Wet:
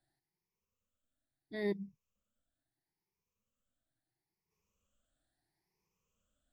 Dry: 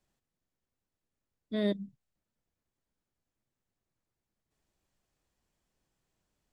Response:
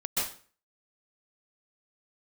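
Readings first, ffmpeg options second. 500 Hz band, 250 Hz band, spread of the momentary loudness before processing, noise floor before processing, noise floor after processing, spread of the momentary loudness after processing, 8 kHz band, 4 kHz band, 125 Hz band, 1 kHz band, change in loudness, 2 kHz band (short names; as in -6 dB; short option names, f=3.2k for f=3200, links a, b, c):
-3.5 dB, -8.0 dB, 11 LU, under -85 dBFS, under -85 dBFS, 11 LU, n/a, -10.5 dB, -6.5 dB, -3.0 dB, -5.5 dB, 0.0 dB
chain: -af "afftfilt=real='re*pow(10,18/40*sin(2*PI*(0.8*log(max(b,1)*sr/1024/100)/log(2)-(0.75)*(pts-256)/sr)))':imag='im*pow(10,18/40*sin(2*PI*(0.8*log(max(b,1)*sr/1024/100)/log(2)-(0.75)*(pts-256)/sr)))':win_size=1024:overlap=0.75,volume=-7dB"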